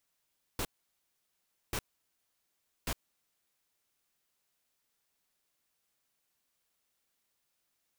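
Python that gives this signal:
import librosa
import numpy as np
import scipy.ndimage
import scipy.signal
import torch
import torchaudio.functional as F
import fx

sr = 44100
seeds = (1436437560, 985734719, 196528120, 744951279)

y = fx.noise_burst(sr, seeds[0], colour='pink', on_s=0.06, off_s=1.08, bursts=3, level_db=-34.0)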